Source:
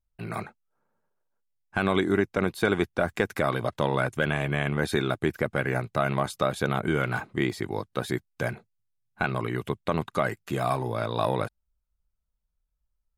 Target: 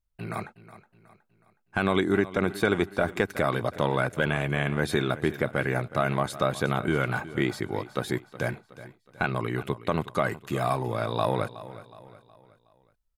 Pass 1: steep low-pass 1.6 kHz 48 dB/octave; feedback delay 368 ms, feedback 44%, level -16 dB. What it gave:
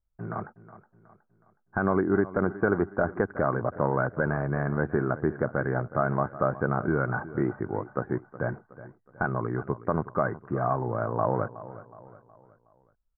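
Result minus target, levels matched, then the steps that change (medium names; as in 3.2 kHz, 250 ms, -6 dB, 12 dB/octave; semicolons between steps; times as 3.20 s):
2 kHz band -2.5 dB
remove: steep low-pass 1.6 kHz 48 dB/octave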